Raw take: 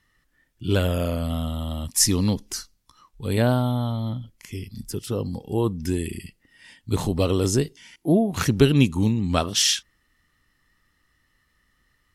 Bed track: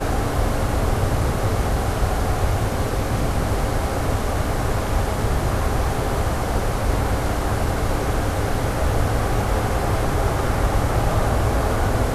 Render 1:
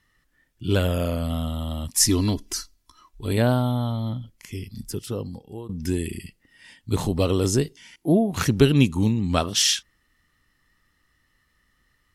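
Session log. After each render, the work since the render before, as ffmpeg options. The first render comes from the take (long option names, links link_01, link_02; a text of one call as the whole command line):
ffmpeg -i in.wav -filter_complex "[0:a]asettb=1/sr,asplit=3[link_01][link_02][link_03];[link_01]atrim=end=2.094[link_04];[link_02]atrim=start=2.09:end=3.32,asetpts=PTS-STARTPTS,afade=type=in:duration=0.004:curve=qsin,afade=type=out:start_time=1.226:duration=0.004:curve=qsin,aecho=1:1:3:0.65,atrim=end_sample=54243[link_05];[link_03]atrim=start=3.316[link_06];[link_04][link_05]acrossfade=duration=0.004:curve1=hsin:curve2=qsin[link_07];[link_07][link_06]acrossfade=duration=0.004:curve1=qsin:curve2=hsin,asplit=2[link_08][link_09];[link_08]atrim=end=5.69,asetpts=PTS-STARTPTS,afade=type=out:start_time=4.92:duration=0.77:silence=0.1[link_10];[link_09]atrim=start=5.69,asetpts=PTS-STARTPTS,afade=type=in:duration=0.004:curve=hsin:silence=0.1[link_11];[link_10][link_11]concat=n=2:v=0:a=1" out.wav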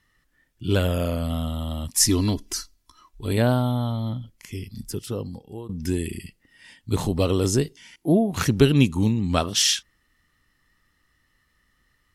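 ffmpeg -i in.wav -af anull out.wav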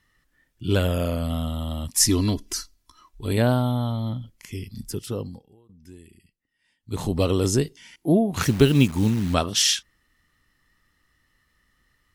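ffmpeg -i in.wav -filter_complex "[0:a]asettb=1/sr,asplit=3[link_01][link_02][link_03];[link_01]atrim=end=2.184[link_04];[link_02]atrim=start=2.18:end=2.58,asetpts=PTS-STARTPTS,afade=type=in:duration=0.004:curve=qsin,afade=type=out:start_time=0.396:duration=0.004:curve=qsin,asuperstop=centerf=840:order=4:qfactor=6.5[link_05];[link_03]atrim=start=2.576[link_06];[link_04][link_05]acrossfade=duration=0.004:curve1=hsin:curve2=qsin[link_07];[link_07][link_06]acrossfade=duration=0.004:curve1=qsin:curve2=hsin,asettb=1/sr,asplit=3[link_08][link_09][link_10];[link_08]atrim=end=8.434[link_11];[link_09]atrim=start=8.43:end=9.34,asetpts=PTS-STARTPTS,afade=type=in:duration=0.004:curve=qsin,afade=type=out:start_time=0.906:duration=0.004:curve=qsin,acrusher=bits=7:dc=4:mix=0:aa=0.000001[link_12];[link_10]atrim=start=9.336[link_13];[link_11][link_12]acrossfade=duration=0.004:curve1=hsin:curve2=qsin[link_14];[link_14][link_13]acrossfade=duration=0.004:curve1=qsin:curve2=hsin,asplit=3[link_15][link_16][link_17];[link_15]atrim=end=5.56,asetpts=PTS-STARTPTS,afade=type=out:start_time=5.22:duration=0.34:silence=0.0944061[link_18];[link_16]atrim=start=5.56:end=6.79,asetpts=PTS-STARTPTS,volume=-20.5dB[link_19];[link_17]atrim=start=6.79,asetpts=PTS-STARTPTS,afade=type=in:duration=0.34:silence=0.0944061[link_20];[link_18][link_19][link_20]concat=n=3:v=0:a=1" out.wav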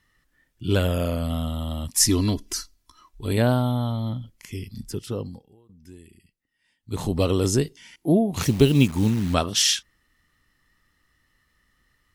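ffmpeg -i in.wav -filter_complex "[0:a]asettb=1/sr,asplit=3[link_01][link_02][link_03];[link_01]atrim=end=4.784[link_04];[link_02]atrim=start=4.78:end=5.25,asetpts=PTS-STARTPTS,afade=type=in:duration=0.004:curve=qsin,afade=type=out:start_time=0.466:duration=0.004:curve=qsin,highshelf=frequency=8700:gain=-7.5[link_05];[link_03]atrim=start=5.246[link_06];[link_04][link_05]acrossfade=duration=0.004:curve1=hsin:curve2=qsin[link_07];[link_07][link_06]acrossfade=duration=0.004:curve1=qsin:curve2=hsin,asettb=1/sr,asplit=3[link_08][link_09][link_10];[link_08]atrim=end=8.114[link_11];[link_09]atrim=start=8.11:end=8.82,asetpts=PTS-STARTPTS,afade=type=in:duration=0.004:curve=qsin,afade=type=out:start_time=0.706:duration=0.004:curve=qsin,equalizer=frequency=1500:width_type=o:width=0.64:gain=-9[link_12];[link_10]atrim=start=8.816[link_13];[link_11][link_12]acrossfade=duration=0.004:curve1=hsin:curve2=qsin[link_14];[link_14][link_13]acrossfade=duration=0.004:curve1=qsin:curve2=hsin" out.wav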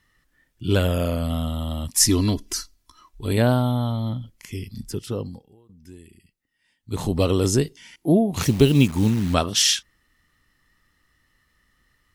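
ffmpeg -i in.wav -af "volume=1.5dB,alimiter=limit=-3dB:level=0:latency=1" out.wav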